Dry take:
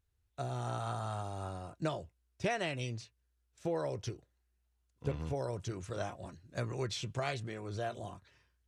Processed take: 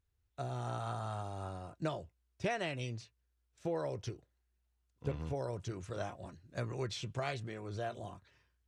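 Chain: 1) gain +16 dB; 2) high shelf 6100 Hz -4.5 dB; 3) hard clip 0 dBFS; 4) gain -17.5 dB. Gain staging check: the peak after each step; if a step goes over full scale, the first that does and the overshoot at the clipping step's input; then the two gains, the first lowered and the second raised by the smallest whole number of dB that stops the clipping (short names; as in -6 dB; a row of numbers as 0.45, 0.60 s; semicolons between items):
-5.0, -5.0, -5.0, -22.5 dBFS; no overload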